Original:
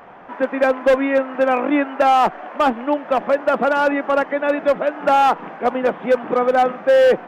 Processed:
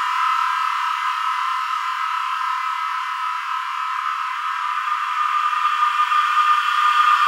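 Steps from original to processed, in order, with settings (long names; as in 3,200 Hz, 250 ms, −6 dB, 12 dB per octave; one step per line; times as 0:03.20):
linear-phase brick-wall high-pass 960 Hz
flutter between parallel walls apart 4.8 metres, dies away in 1.1 s
extreme stretch with random phases 35×, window 0.25 s, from 0:02.41
level +3.5 dB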